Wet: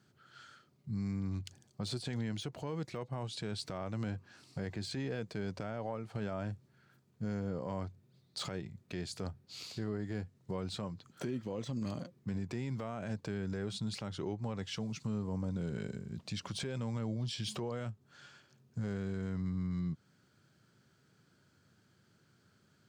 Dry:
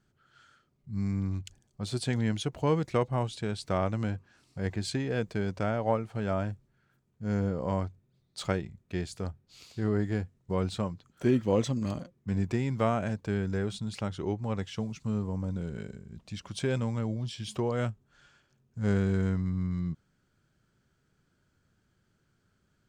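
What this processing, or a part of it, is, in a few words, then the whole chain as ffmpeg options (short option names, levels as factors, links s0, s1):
broadcast voice chain: -af "highpass=f=93:w=0.5412,highpass=f=93:w=1.3066,deesser=1,acompressor=threshold=0.0126:ratio=4,equalizer=f=4500:t=o:w=0.54:g=4.5,alimiter=level_in=2.82:limit=0.0631:level=0:latency=1:release=32,volume=0.355,volume=1.58"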